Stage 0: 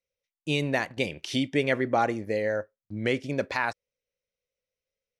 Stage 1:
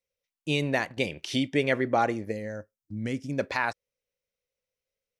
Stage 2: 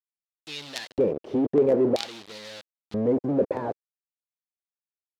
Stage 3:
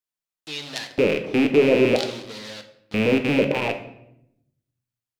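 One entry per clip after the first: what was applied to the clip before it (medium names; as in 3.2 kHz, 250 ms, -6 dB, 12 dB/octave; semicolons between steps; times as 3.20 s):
time-frequency box 2.32–3.39 s, 310–4800 Hz -10 dB
companded quantiser 2-bit; LFO band-pass square 0.51 Hz 460–4000 Hz; tilt shelf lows +8.5 dB, about 850 Hz; trim +6.5 dB
rattle on loud lows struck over -38 dBFS, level -18 dBFS; simulated room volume 210 m³, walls mixed, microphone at 0.47 m; in parallel at -6 dB: saturation -17 dBFS, distortion -13 dB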